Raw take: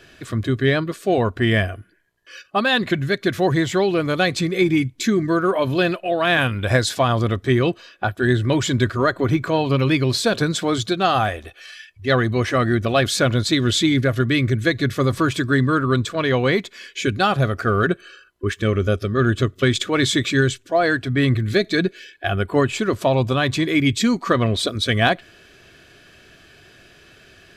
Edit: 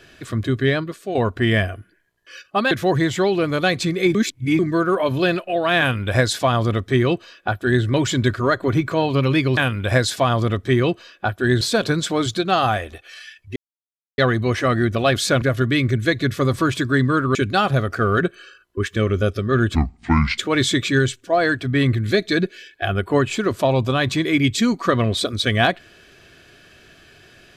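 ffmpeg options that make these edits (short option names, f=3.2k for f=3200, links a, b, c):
-filter_complex "[0:a]asplit=12[a][b][c][d][e][f][g][h][i][j][k][l];[a]atrim=end=1.15,asetpts=PTS-STARTPTS,afade=t=out:st=0.62:d=0.53:silence=0.354813[m];[b]atrim=start=1.15:end=2.712,asetpts=PTS-STARTPTS,afade=t=in:d=0.004:c=hsin:silence=0.354813[n];[c]atrim=start=3.268:end=4.712[o];[d]atrim=start=4.708:end=5.152,asetpts=PTS-STARTPTS,areverse[p];[e]atrim=start=5.148:end=10.132[q];[f]atrim=start=6.358:end=8.402[r];[g]atrim=start=10.128:end=12.08,asetpts=PTS-STARTPTS,afade=t=out:st=1.948:d=0.004:c=hsin,apad=pad_dur=0.62[s];[h]atrim=start=12.08:end=13.322,asetpts=PTS-STARTPTS,afade=t=in:d=0.004:c=hsin[t];[i]atrim=start=14.008:end=15.942[u];[j]atrim=start=17.008:end=19.414[v];[k]atrim=start=19.41:end=19.8,asetpts=PTS-STARTPTS,asetrate=27342,aresample=44100,atrim=end_sample=27740,asetpts=PTS-STARTPTS[w];[l]atrim=start=19.796[x];[m][n]concat=n=2:v=0:a=1[y];[y][o]acrossfade=d=0.004:c1=hsin:c2=hsin[z];[z][p]acrossfade=d=0.004:c1=hsin:c2=hsin[aa];[aa][q]acrossfade=d=0.004:c1=hsin:c2=hsin[ab];[ab][r]acrossfade=d=0.004:c1=hsin:c2=hsin[ac];[s][t]concat=n=2:v=0:a=1[ad];[ac][ad]acrossfade=d=0.004:c1=hsin:c2=hsin[ae];[ae][u]acrossfade=d=0.004:c1=hsin:c2=hsin[af];[af][v]acrossfade=d=0.004:c1=hsin:c2=hsin[ag];[ag][w]acrossfade=d=0.004:c1=hsin:c2=hsin[ah];[ah][x]acrossfade=d=0.004:c1=hsin:c2=hsin"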